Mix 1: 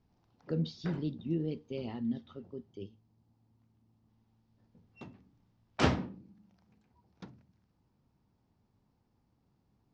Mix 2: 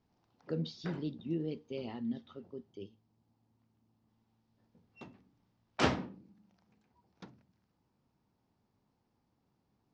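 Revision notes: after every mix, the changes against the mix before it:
master: add bass shelf 150 Hz -9.5 dB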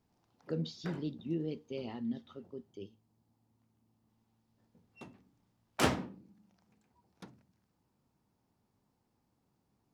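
master: remove low-pass 5.9 kHz 24 dB/octave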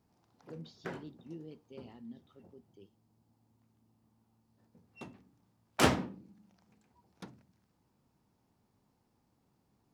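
speech -11.0 dB; background +3.0 dB

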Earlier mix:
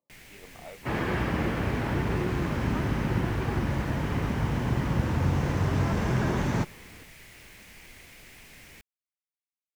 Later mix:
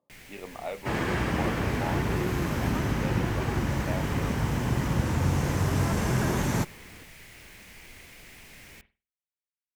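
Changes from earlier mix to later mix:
speech +9.5 dB; second sound: remove distance through air 120 m; reverb: on

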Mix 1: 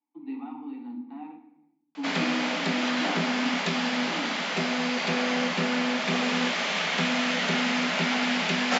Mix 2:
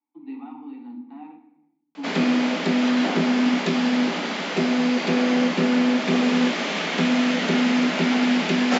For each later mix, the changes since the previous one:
background: add peaking EQ 310 Hz +12.5 dB 1.2 oct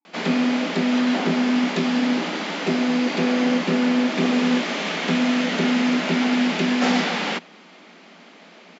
background: entry -1.90 s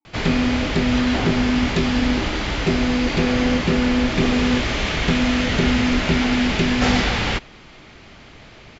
master: remove rippled Chebyshev high-pass 170 Hz, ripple 3 dB

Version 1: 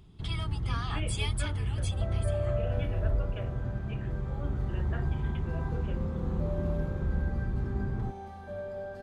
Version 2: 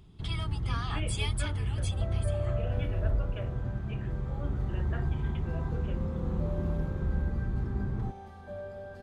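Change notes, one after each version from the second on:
second sound: send -9.5 dB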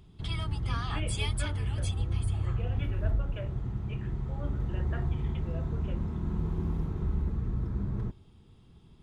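second sound: muted; reverb: off

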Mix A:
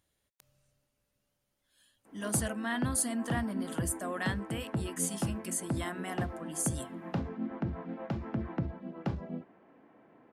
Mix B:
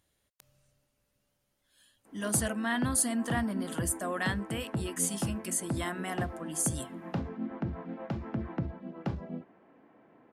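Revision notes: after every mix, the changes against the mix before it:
speech +3.0 dB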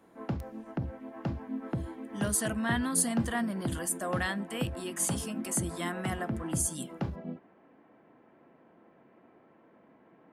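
background: entry -2.05 s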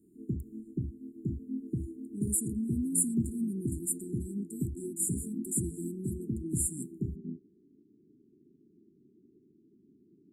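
master: add brick-wall FIR band-stop 430–6900 Hz

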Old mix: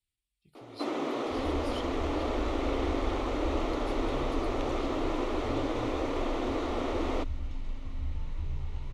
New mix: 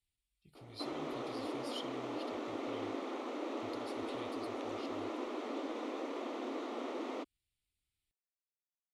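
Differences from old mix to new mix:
first sound -8.5 dB; second sound: muted

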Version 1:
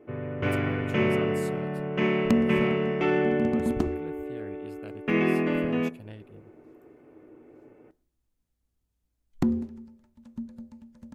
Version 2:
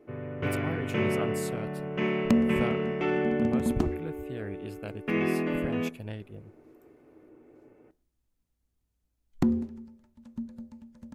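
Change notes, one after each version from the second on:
speech +5.5 dB; first sound -3.5 dB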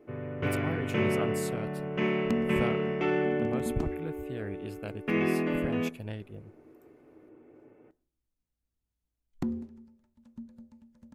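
second sound -7.5 dB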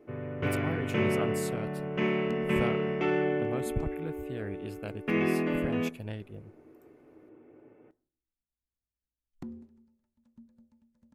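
second sound -10.0 dB

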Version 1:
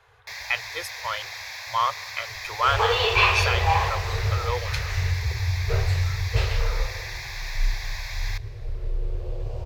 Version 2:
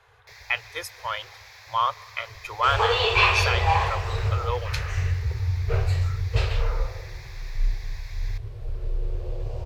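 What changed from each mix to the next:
first sound -11.5 dB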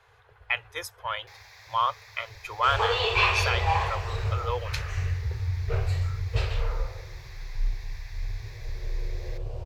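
first sound: entry +1.00 s; second sound -3.5 dB; reverb: off

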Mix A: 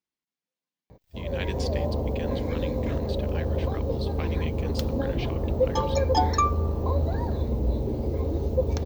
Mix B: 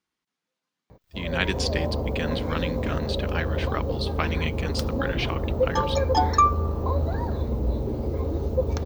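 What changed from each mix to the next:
speech +9.0 dB; master: add peaking EQ 1.3 kHz +6.5 dB 0.68 oct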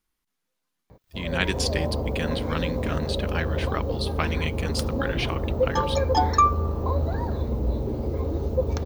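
speech: remove band-pass 120–6400 Hz

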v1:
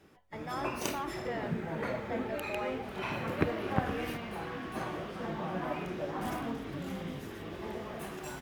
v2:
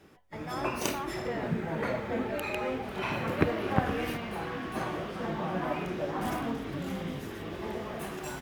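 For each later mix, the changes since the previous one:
background +3.5 dB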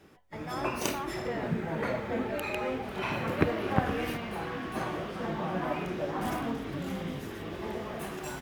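no change

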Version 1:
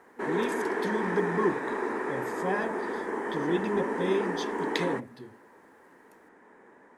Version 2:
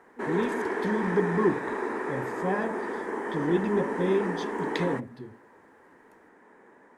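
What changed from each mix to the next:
speech: add tilt EQ -2 dB/octave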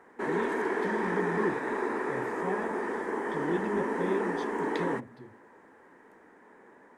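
speech -7.0 dB

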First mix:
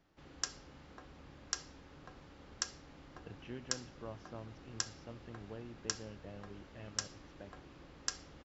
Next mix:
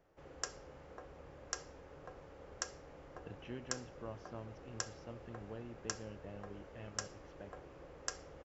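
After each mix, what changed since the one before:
background: add graphic EQ 250/500/4000 Hz -7/+10/-9 dB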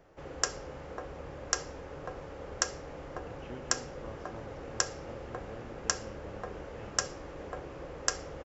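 background +11.0 dB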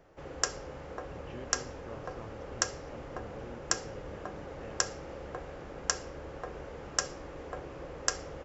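speech: entry -2.15 s

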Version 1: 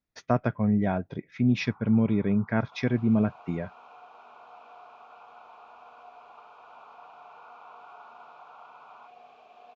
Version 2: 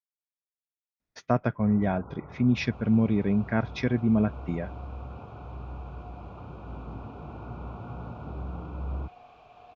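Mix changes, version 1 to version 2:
speech: entry +1.00 s; first sound: remove steep high-pass 810 Hz 72 dB/octave

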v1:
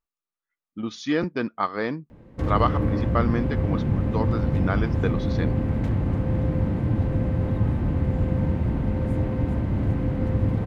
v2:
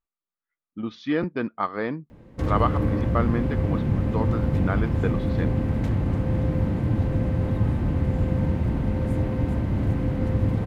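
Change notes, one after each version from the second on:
speech: add distance through air 320 m; master: add treble shelf 3.9 kHz +6 dB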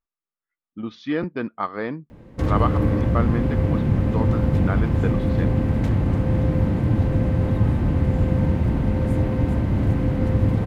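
background +3.5 dB

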